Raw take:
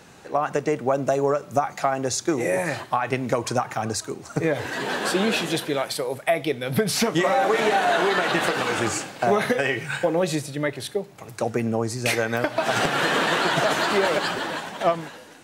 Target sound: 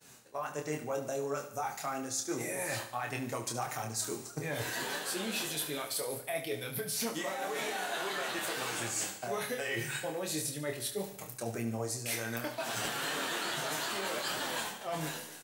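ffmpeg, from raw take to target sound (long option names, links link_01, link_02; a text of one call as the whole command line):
ffmpeg -i in.wav -filter_complex "[0:a]aemphasis=mode=production:type=75fm,flanger=delay=6.4:depth=3.3:regen=30:speed=1.6:shape=triangular,areverse,acompressor=threshold=-34dB:ratio=10,areverse,agate=range=-33dB:threshold=-42dB:ratio=3:detection=peak,asplit=2[link_01][link_02];[link_02]adelay=26,volume=-5dB[link_03];[link_01][link_03]amix=inputs=2:normalize=0,asplit=2[link_04][link_05];[link_05]aecho=0:1:72|144|216|288|360|432:0.251|0.133|0.0706|0.0374|0.0198|0.0105[link_06];[link_04][link_06]amix=inputs=2:normalize=0" out.wav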